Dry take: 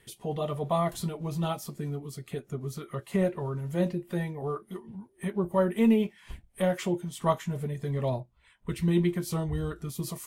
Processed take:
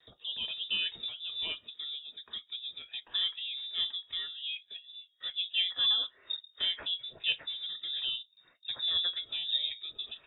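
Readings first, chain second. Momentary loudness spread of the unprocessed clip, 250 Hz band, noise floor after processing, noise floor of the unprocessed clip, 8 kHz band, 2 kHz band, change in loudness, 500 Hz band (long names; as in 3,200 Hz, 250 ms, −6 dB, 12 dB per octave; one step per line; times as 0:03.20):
13 LU, below −30 dB, −67 dBFS, −63 dBFS, below −35 dB, +1.0 dB, −2.0 dB, −29.0 dB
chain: low shelf with overshoot 100 Hz +6.5 dB, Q 1.5
voice inversion scrambler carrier 3,700 Hz
noise gate with hold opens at −50 dBFS
level −5.5 dB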